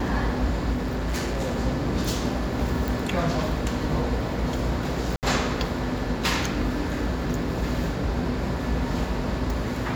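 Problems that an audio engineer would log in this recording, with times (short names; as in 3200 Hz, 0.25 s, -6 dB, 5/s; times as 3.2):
0.72–1.59 clipped -23 dBFS
2.88 pop
5.16–5.23 gap 68 ms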